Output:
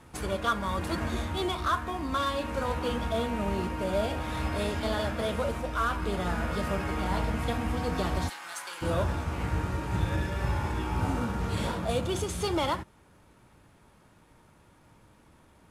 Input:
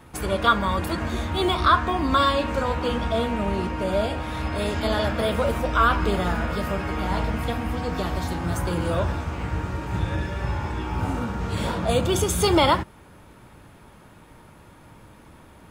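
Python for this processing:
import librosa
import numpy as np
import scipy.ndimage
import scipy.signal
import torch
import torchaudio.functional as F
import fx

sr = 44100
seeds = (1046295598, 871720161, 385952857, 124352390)

y = fx.cvsd(x, sr, bps=64000)
y = fx.highpass(y, sr, hz=1400.0, slope=12, at=(8.28, 8.81), fade=0.02)
y = fx.rider(y, sr, range_db=4, speed_s=0.5)
y = y * librosa.db_to_amplitude(-6.0)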